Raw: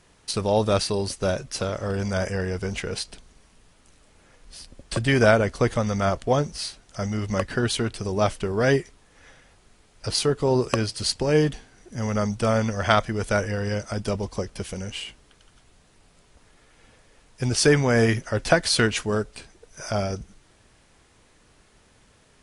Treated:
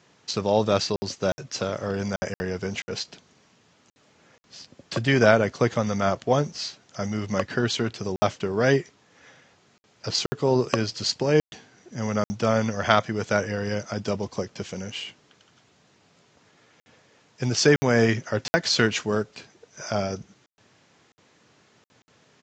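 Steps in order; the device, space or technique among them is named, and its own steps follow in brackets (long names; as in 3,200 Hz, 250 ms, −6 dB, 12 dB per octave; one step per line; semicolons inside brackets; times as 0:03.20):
call with lost packets (high-pass filter 110 Hz 24 dB per octave; downsampling to 16,000 Hz; dropped packets of 60 ms random)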